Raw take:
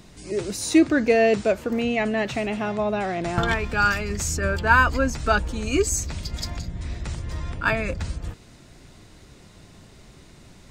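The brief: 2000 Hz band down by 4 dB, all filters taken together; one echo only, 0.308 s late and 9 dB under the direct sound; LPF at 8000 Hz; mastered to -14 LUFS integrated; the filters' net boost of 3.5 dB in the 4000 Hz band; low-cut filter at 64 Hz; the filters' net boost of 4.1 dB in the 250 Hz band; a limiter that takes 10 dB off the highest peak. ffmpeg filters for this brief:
-af "highpass=64,lowpass=8k,equalizer=f=250:t=o:g=5.5,equalizer=f=2k:t=o:g=-7.5,equalizer=f=4k:t=o:g=7,alimiter=limit=-14.5dB:level=0:latency=1,aecho=1:1:308:0.355,volume=11dB"

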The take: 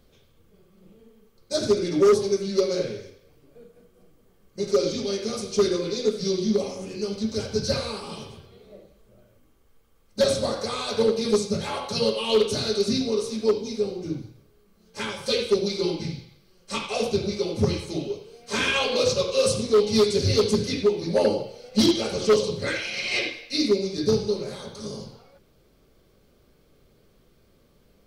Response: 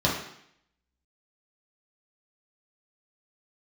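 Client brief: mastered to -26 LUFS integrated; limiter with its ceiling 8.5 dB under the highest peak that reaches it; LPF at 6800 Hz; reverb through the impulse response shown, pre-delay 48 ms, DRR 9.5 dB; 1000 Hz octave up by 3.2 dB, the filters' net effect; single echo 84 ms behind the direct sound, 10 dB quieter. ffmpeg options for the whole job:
-filter_complex "[0:a]lowpass=6.8k,equalizer=f=1k:t=o:g=4,alimiter=limit=-18dB:level=0:latency=1,aecho=1:1:84:0.316,asplit=2[a][b];[1:a]atrim=start_sample=2205,adelay=48[c];[b][c]afir=irnorm=-1:irlink=0,volume=-23dB[d];[a][d]amix=inputs=2:normalize=0,volume=1dB"

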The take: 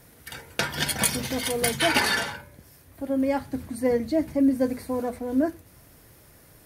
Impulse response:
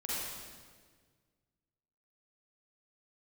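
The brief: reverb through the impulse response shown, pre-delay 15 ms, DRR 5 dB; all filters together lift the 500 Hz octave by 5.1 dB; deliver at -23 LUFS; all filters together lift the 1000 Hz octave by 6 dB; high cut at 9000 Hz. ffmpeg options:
-filter_complex "[0:a]lowpass=9k,equalizer=f=500:t=o:g=4,equalizer=f=1k:t=o:g=6.5,asplit=2[a][b];[1:a]atrim=start_sample=2205,adelay=15[c];[b][c]afir=irnorm=-1:irlink=0,volume=-9dB[d];[a][d]amix=inputs=2:normalize=0,volume=-1.5dB"

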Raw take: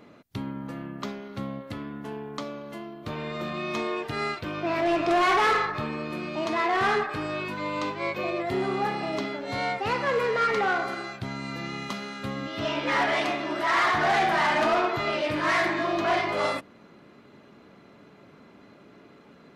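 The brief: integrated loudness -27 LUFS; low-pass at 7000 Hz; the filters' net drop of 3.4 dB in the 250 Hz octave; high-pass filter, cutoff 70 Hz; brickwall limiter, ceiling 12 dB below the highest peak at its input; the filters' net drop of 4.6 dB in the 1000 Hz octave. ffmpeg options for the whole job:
-af "highpass=70,lowpass=7k,equalizer=f=250:t=o:g=-4.5,equalizer=f=1k:t=o:g=-6,volume=10dB,alimiter=limit=-19dB:level=0:latency=1"

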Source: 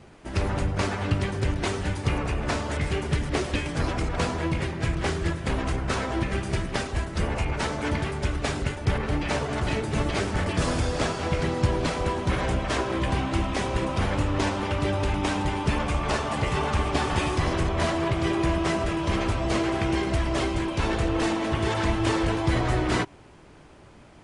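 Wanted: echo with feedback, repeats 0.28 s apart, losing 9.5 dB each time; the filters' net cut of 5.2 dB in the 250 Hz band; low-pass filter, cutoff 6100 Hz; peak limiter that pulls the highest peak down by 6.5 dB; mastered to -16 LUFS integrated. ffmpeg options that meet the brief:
-af "lowpass=6.1k,equalizer=f=250:t=o:g=-8,alimiter=limit=-18.5dB:level=0:latency=1,aecho=1:1:280|560|840|1120:0.335|0.111|0.0365|0.012,volume=13dB"

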